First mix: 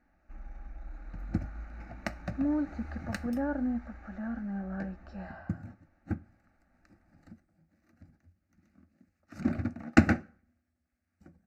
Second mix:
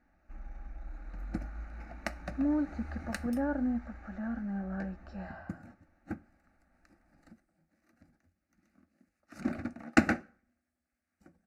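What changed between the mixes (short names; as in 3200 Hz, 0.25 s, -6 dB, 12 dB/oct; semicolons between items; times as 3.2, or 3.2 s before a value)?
second sound: add bell 100 Hz -12.5 dB 1.7 oct; master: add bell 10000 Hz +8.5 dB 0.4 oct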